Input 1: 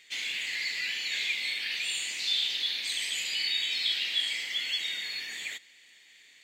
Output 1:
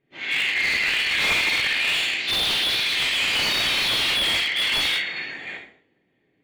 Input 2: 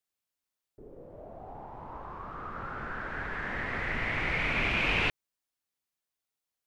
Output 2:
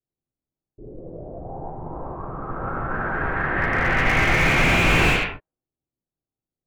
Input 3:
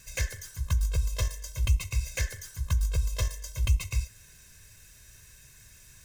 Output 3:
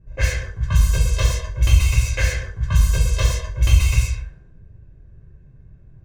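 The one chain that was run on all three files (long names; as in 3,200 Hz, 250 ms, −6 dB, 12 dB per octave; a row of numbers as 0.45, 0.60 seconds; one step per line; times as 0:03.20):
reverb whose tail is shaped and stops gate 310 ms falling, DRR −5 dB
low-pass that shuts in the quiet parts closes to 320 Hz, open at −18.5 dBFS
slew-rate limiting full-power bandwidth 110 Hz
loudness normalisation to −20 LKFS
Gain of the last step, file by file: +8.5, +7.5, +6.5 decibels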